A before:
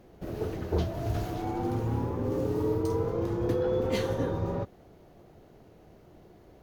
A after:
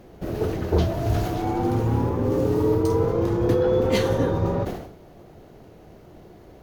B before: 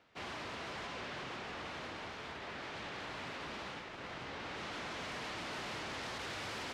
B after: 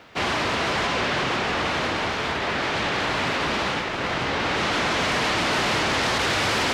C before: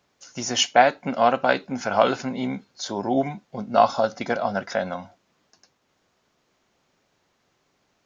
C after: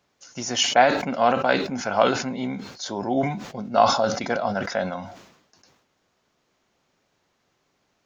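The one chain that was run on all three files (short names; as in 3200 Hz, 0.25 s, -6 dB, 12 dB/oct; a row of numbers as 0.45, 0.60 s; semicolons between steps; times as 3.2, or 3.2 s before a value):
sustainer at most 70 dB/s; match loudness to -23 LUFS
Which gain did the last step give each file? +7.5, +20.0, -1.5 dB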